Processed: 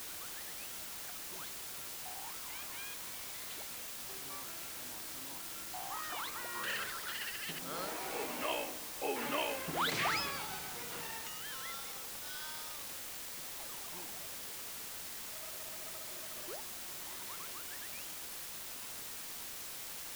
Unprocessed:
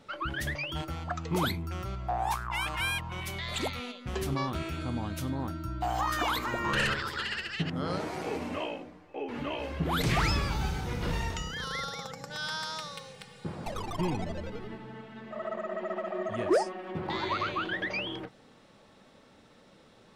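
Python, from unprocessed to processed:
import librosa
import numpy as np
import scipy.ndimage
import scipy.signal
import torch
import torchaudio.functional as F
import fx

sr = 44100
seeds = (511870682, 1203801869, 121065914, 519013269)

y = fx.doppler_pass(x, sr, speed_mps=5, closest_m=2.4, pass_at_s=9.04)
y = fx.weighting(y, sr, curve='A')
y = fx.quant_dither(y, sr, seeds[0], bits=8, dither='triangular')
y = F.gain(torch.from_numpy(y), 3.0).numpy()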